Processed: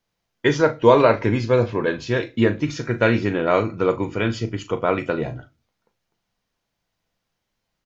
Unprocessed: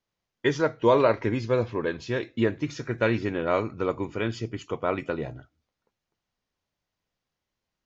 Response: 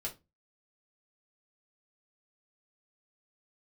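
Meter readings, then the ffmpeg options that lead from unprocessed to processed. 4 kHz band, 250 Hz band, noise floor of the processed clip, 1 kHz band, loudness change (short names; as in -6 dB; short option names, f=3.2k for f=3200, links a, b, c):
+6.5 dB, +6.5 dB, -78 dBFS, +6.5 dB, +6.5 dB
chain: -filter_complex "[0:a]asplit=2[a][b];[b]adelay=39,volume=-12dB[c];[a][c]amix=inputs=2:normalize=0,asplit=2[d][e];[1:a]atrim=start_sample=2205[f];[e][f]afir=irnorm=-1:irlink=0,volume=-8.5dB[g];[d][g]amix=inputs=2:normalize=0,volume=4.5dB"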